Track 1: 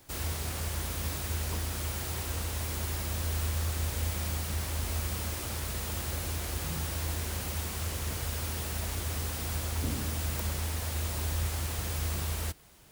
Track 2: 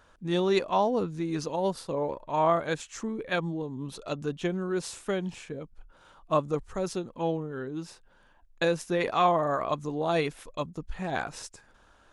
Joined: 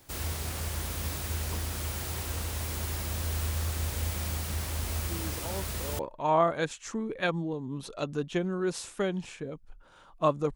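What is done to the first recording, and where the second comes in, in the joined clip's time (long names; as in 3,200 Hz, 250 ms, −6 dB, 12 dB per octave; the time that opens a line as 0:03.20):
track 1
0:05.08: mix in track 2 from 0:01.17 0.91 s −11 dB
0:05.99: continue with track 2 from 0:02.08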